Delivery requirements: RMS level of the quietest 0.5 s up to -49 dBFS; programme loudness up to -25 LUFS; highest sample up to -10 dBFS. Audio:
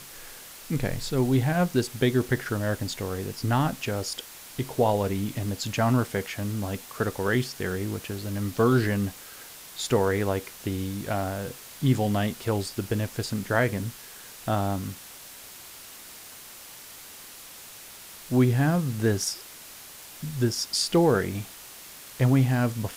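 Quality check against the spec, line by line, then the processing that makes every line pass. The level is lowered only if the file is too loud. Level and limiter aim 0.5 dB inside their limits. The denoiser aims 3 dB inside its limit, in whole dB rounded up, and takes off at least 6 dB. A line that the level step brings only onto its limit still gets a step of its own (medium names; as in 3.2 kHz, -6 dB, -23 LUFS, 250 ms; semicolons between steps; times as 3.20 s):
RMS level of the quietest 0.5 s -45 dBFS: fail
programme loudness -27.0 LUFS: pass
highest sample -9.0 dBFS: fail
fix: noise reduction 7 dB, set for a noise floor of -45 dBFS; peak limiter -10.5 dBFS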